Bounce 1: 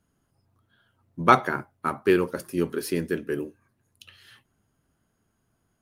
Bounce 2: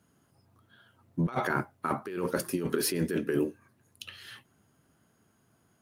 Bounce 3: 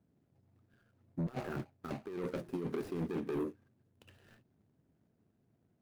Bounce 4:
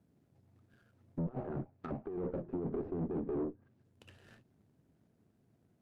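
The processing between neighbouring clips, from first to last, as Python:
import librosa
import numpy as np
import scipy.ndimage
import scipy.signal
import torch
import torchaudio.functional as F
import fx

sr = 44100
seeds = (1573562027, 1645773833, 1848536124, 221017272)

y1 = scipy.signal.sosfilt(scipy.signal.butter(2, 100.0, 'highpass', fs=sr, output='sos'), x)
y1 = fx.over_compress(y1, sr, threshold_db=-30.0, ratio=-1.0)
y2 = scipy.ndimage.median_filter(y1, 41, mode='constant')
y2 = 10.0 ** (-25.5 / 20.0) * np.tanh(y2 / 10.0 ** (-25.5 / 20.0))
y2 = y2 * 10.0 ** (-4.0 / 20.0)
y3 = fx.tube_stage(y2, sr, drive_db=35.0, bias=0.45)
y3 = fx.env_lowpass_down(y3, sr, base_hz=770.0, full_db=-42.0)
y3 = y3 * 10.0 ** (4.5 / 20.0)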